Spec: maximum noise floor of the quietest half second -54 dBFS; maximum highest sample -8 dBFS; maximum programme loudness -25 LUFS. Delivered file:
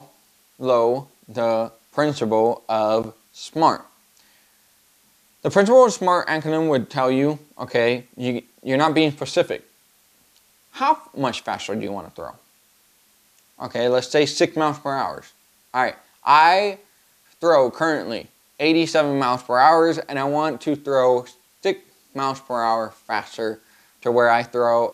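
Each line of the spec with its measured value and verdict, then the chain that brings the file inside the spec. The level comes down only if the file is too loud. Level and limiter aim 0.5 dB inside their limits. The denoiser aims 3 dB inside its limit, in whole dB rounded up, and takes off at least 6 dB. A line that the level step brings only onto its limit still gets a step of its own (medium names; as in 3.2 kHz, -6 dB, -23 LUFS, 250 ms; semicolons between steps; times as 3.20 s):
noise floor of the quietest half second -59 dBFS: pass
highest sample -3.0 dBFS: fail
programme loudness -20.5 LUFS: fail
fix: trim -5 dB; peak limiter -8.5 dBFS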